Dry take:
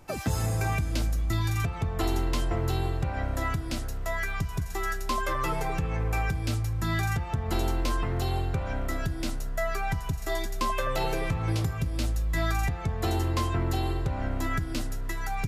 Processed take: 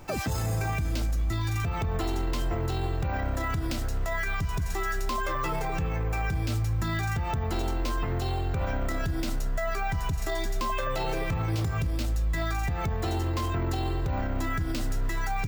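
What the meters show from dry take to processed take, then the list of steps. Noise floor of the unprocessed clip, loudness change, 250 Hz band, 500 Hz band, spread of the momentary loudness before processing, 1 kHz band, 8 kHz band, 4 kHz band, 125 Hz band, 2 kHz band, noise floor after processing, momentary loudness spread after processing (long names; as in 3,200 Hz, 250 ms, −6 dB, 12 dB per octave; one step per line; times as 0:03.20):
−34 dBFS, 0.0 dB, −0.5 dB, 0.0 dB, 4 LU, 0.0 dB, −1.5 dB, −1.0 dB, −0.5 dB, 0.0 dB, −30 dBFS, 2 LU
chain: brickwall limiter −27.5 dBFS, peak gain reduction 10 dB
bad sample-rate conversion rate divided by 2×, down filtered, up hold
level +6.5 dB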